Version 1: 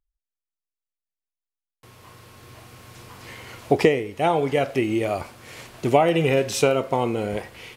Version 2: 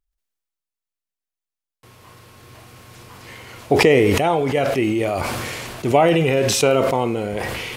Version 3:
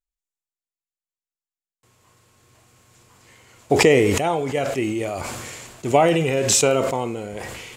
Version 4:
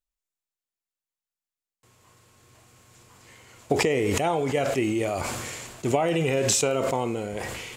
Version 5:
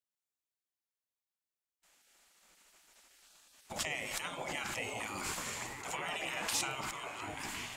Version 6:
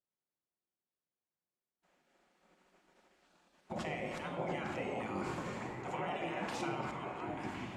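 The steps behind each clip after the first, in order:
sustainer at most 20 dB/s; gain +1 dB
bell 7300 Hz +11.5 dB 0.44 oct; upward expander 1.5:1, over -36 dBFS
compressor 12:1, threshold -19 dBFS, peak gain reduction 10 dB
delay with a stepping band-pass 0.605 s, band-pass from 550 Hz, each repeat 0.7 oct, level -2 dB; spectral gate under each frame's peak -15 dB weak; gain -4.5 dB
band-pass 260 Hz, Q 0.51; reverb RT60 1.3 s, pre-delay 5 ms, DRR 4 dB; gain +5.5 dB

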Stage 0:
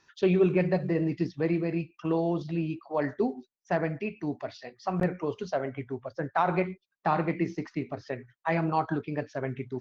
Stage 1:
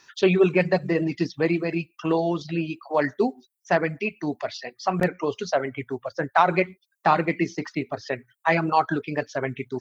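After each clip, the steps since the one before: reverb removal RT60 0.55 s; tilt +2 dB/oct; gain +8 dB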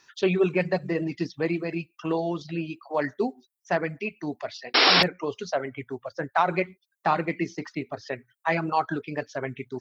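painted sound noise, 4.74–5.03, 250–5600 Hz -14 dBFS; gain -4 dB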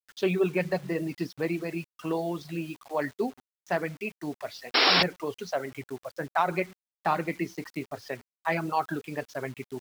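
bit-crush 8-bit; gain -3 dB

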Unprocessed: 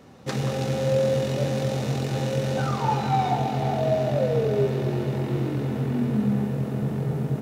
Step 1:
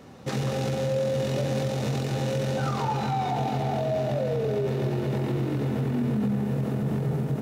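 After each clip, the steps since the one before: limiter -21 dBFS, peak gain reduction 9.5 dB; gain +2 dB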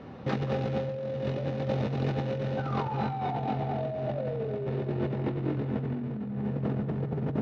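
negative-ratio compressor -29 dBFS, ratio -0.5; air absorption 280 m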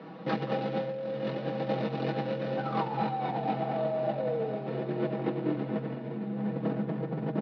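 elliptic band-pass 180–4800 Hz, stop band 40 dB; comb 6.2 ms; diffused feedback echo 1.031 s, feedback 41%, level -12.5 dB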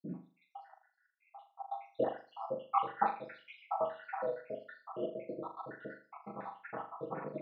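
random spectral dropouts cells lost 84%; band-pass sweep 220 Hz -> 1200 Hz, 1.06–2.66; flutter echo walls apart 6.9 m, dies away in 0.37 s; gain +10 dB

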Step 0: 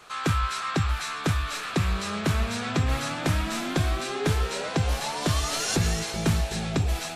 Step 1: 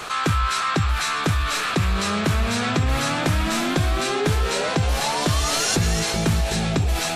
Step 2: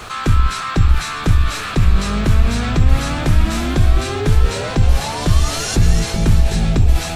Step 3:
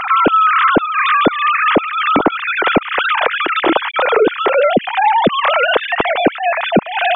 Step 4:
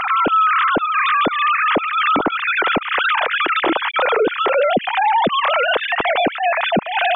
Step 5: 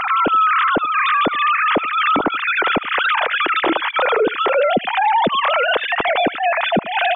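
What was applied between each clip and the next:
fast leveller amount 50%; gain +2 dB
octaver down 2 oct, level -2 dB; low shelf 180 Hz +10.5 dB; bit-crush 9-bit; gain -1 dB
sine-wave speech; compressor 4:1, threshold -12 dBFS, peak gain reduction 9 dB; gain +2.5 dB
limiter -9.5 dBFS, peak gain reduction 8 dB
echo 78 ms -23 dB

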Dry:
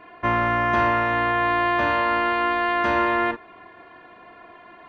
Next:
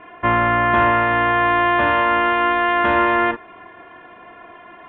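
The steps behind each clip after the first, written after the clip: elliptic low-pass 3400 Hz, stop band 40 dB; gain +5 dB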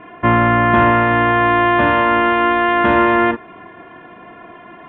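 bell 180 Hz +9 dB 1.9 oct; gain +1.5 dB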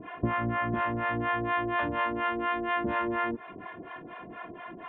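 compressor 12:1, threshold -21 dBFS, peak gain reduction 13.5 dB; harmonic tremolo 4.2 Hz, depth 100%, crossover 550 Hz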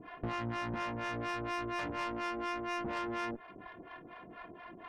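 tube stage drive 30 dB, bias 0.8; gain -2.5 dB

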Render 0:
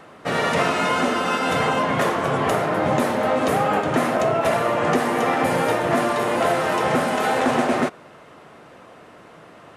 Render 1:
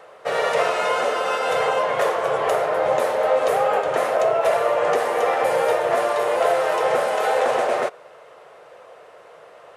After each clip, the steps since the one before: resonant low shelf 360 Hz -10.5 dB, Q 3; gain -2.5 dB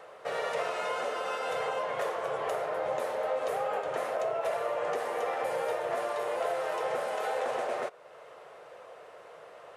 compressor 1.5:1, threshold -39 dBFS, peak gain reduction 9 dB; gain -4 dB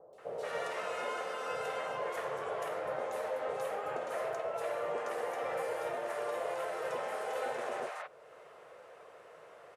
three bands offset in time lows, highs, mids 0.13/0.18 s, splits 740/3800 Hz; gain -3 dB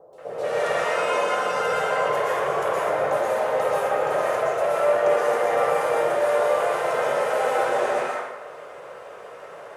plate-style reverb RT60 1.2 s, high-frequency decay 0.65×, pre-delay 0.105 s, DRR -6 dB; gain +7 dB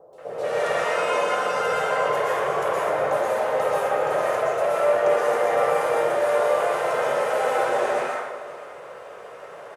echo 0.521 s -17.5 dB

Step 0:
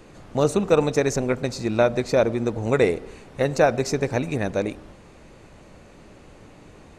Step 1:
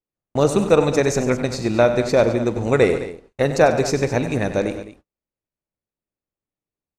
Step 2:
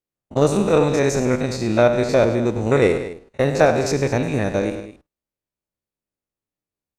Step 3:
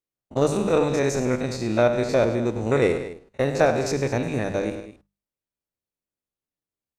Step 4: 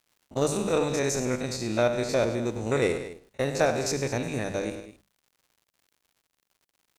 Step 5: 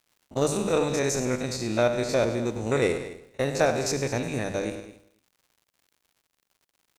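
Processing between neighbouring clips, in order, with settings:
gate -34 dBFS, range -50 dB; on a send: tapped delay 43/96/143/211 ms -18/-11.5/-18/-14.5 dB; on the sum: gain +3 dB
stepped spectrum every 50 ms; added harmonics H 6 -34 dB, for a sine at -2.5 dBFS; gain +1.5 dB
notches 50/100/150/200 Hz; gain -4 dB
high shelf 3700 Hz +10 dB; crackle 160/s -47 dBFS; gain -5 dB
echo 0.281 s -23.5 dB; gain +1 dB

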